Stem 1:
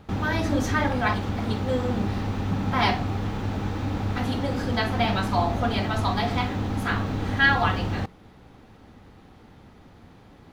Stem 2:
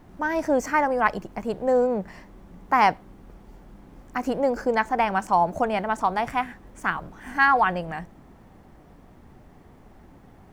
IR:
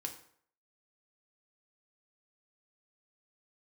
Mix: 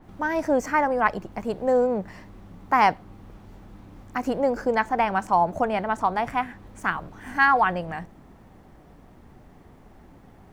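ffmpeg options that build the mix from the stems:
-filter_complex "[0:a]acompressor=threshold=-32dB:ratio=6,volume=-17dB[a];[1:a]adynamicequalizer=threshold=0.0126:dfrequency=2800:dqfactor=0.7:tfrequency=2800:tqfactor=0.7:attack=5:release=100:ratio=0.375:range=2:mode=cutabove:tftype=highshelf,volume=0dB[b];[a][b]amix=inputs=2:normalize=0"

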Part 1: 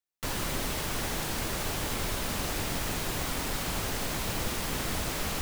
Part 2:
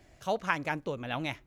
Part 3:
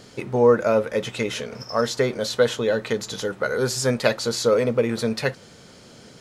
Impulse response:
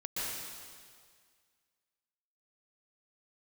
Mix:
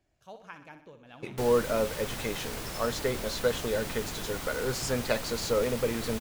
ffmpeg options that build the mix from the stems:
-filter_complex "[0:a]adelay=1150,volume=-5.5dB[a];[1:a]bandreject=f=2k:w=12,volume=-16.5dB,asplit=2[b][c];[c]volume=-10dB[d];[2:a]agate=range=-33dB:threshold=-35dB:ratio=3:detection=peak,adelay=1050,volume=-8.5dB[e];[d]aecho=0:1:62|124|186|248|310|372|434|496:1|0.55|0.303|0.166|0.0915|0.0503|0.0277|0.0152[f];[a][b][e][f]amix=inputs=4:normalize=0"

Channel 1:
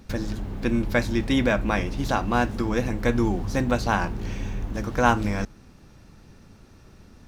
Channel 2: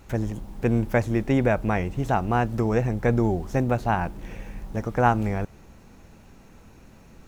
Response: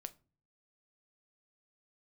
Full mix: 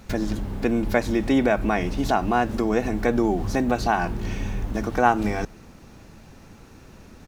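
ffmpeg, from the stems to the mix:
-filter_complex "[0:a]volume=2dB[a];[1:a]highpass=210,adelay=0.4,volume=1.5dB,asplit=2[b][c];[c]apad=whole_len=320731[d];[a][d]sidechaincompress=threshold=-25dB:ratio=8:attack=6.9:release=103[e];[e][b]amix=inputs=2:normalize=0"

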